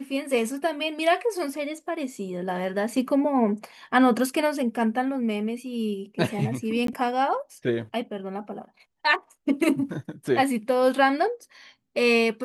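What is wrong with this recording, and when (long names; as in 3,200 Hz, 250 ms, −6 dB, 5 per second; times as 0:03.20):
0:06.87–0:06.88: drop-out 13 ms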